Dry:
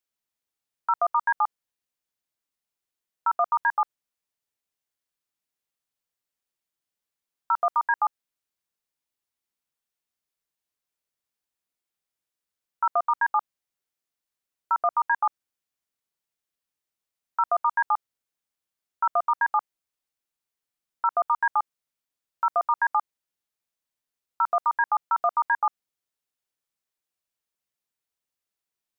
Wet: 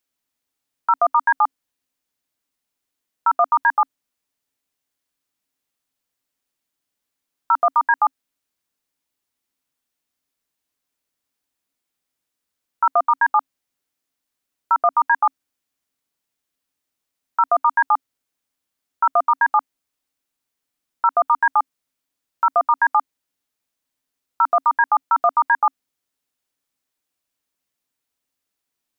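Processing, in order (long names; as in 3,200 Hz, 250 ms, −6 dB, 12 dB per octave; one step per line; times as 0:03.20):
parametric band 270 Hz +10 dB 0.21 octaves
level +6.5 dB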